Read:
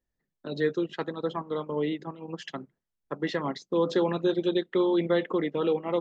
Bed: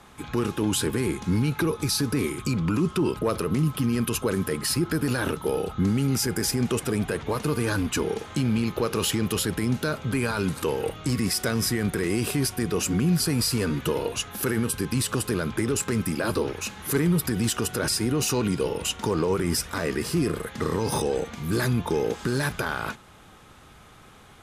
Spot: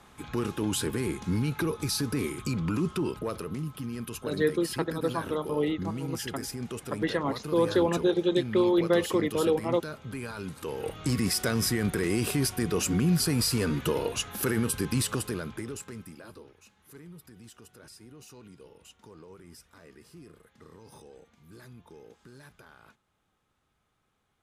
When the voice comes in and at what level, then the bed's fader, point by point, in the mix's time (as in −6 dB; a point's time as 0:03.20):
3.80 s, +1.0 dB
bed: 0:02.88 −4.5 dB
0:03.68 −11.5 dB
0:10.58 −11.5 dB
0:11.04 −2 dB
0:15.02 −2 dB
0:16.54 −25.5 dB